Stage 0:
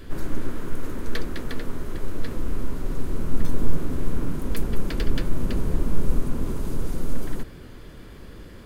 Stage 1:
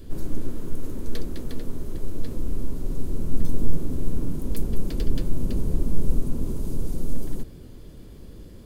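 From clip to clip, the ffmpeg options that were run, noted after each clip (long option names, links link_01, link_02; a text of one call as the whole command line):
ffmpeg -i in.wav -af "equalizer=frequency=1600:width_type=o:width=2.1:gain=-13" out.wav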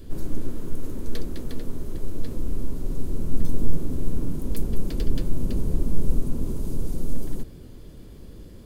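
ffmpeg -i in.wav -af anull out.wav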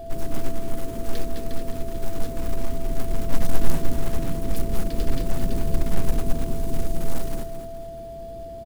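ffmpeg -i in.wav -af "acrusher=bits=6:mode=log:mix=0:aa=0.000001,aecho=1:1:217|434|651|868|1085:0.355|0.167|0.0784|0.0368|0.0173,aeval=exprs='val(0)+0.0178*sin(2*PI*670*n/s)':channel_layout=same" out.wav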